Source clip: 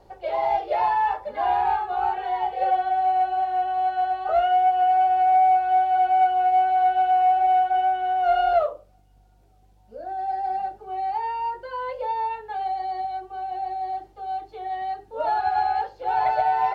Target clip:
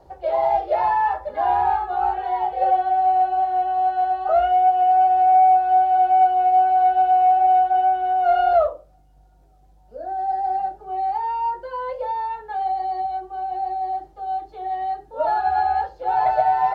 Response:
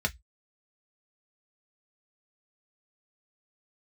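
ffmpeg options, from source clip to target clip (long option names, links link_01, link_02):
-filter_complex "[0:a]asplit=2[link_01][link_02];[1:a]atrim=start_sample=2205,highshelf=frequency=2800:gain=-9.5[link_03];[link_02][link_03]afir=irnorm=-1:irlink=0,volume=-10.5dB[link_04];[link_01][link_04]amix=inputs=2:normalize=0"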